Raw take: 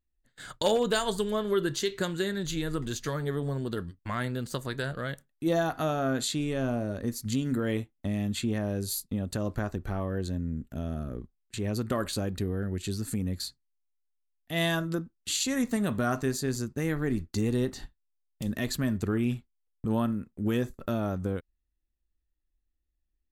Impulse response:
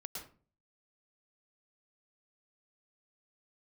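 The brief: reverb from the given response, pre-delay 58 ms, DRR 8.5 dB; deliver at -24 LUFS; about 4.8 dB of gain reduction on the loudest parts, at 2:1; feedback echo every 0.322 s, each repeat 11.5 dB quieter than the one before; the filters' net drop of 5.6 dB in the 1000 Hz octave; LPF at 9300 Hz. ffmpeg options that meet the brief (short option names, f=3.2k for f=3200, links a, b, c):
-filter_complex "[0:a]lowpass=9.3k,equalizer=f=1k:t=o:g=-8.5,acompressor=threshold=-32dB:ratio=2,aecho=1:1:322|644|966:0.266|0.0718|0.0194,asplit=2[a][b];[1:a]atrim=start_sample=2205,adelay=58[c];[b][c]afir=irnorm=-1:irlink=0,volume=-6dB[d];[a][d]amix=inputs=2:normalize=0,volume=10.5dB"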